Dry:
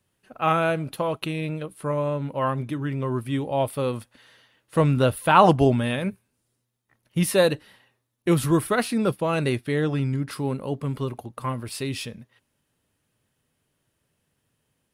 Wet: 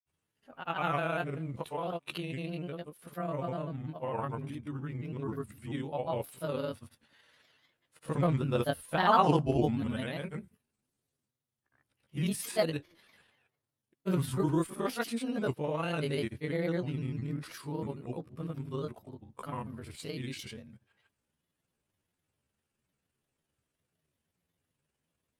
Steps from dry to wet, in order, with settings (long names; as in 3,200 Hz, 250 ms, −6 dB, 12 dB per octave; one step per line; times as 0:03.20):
time stretch by overlap-add 1.7×, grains 63 ms
echo ahead of the sound 33 ms −21 dB
granular cloud, pitch spread up and down by 3 semitones
level −7.5 dB